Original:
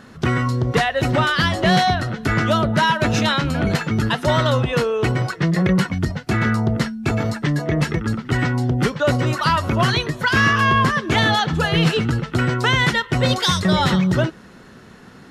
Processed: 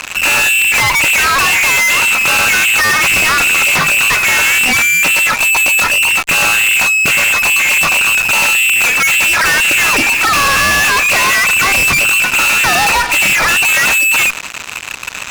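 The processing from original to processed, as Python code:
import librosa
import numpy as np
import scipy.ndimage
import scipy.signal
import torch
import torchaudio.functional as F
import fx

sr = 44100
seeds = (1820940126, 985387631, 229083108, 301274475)

y = fx.freq_invert(x, sr, carrier_hz=2800)
y = fx.fuzz(y, sr, gain_db=40.0, gate_db=-41.0)
y = y * 10.0 ** (3.0 / 20.0)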